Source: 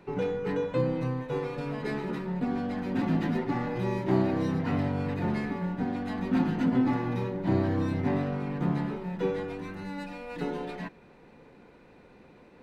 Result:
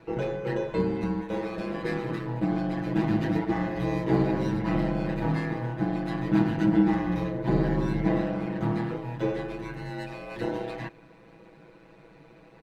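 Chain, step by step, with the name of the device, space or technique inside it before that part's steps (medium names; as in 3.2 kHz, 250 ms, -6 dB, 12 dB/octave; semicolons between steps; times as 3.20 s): ring-modulated robot voice (ring modulator 57 Hz; comb 6.1 ms, depth 97%); trim +2 dB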